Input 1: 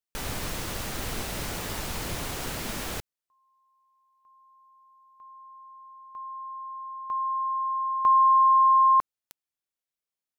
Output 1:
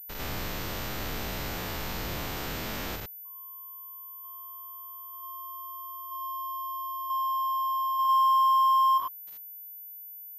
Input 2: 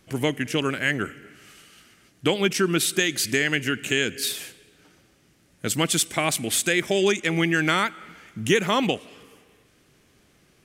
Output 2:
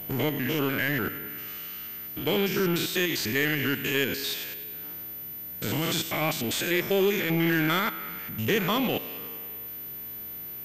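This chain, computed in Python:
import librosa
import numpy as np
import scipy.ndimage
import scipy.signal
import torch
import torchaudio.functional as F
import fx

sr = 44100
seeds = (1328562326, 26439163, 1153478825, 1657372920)

y = fx.spec_steps(x, sr, hold_ms=100)
y = fx.power_curve(y, sr, exponent=0.7)
y = fx.pwm(y, sr, carrier_hz=14000.0)
y = y * 10.0 ** (-4.0 / 20.0)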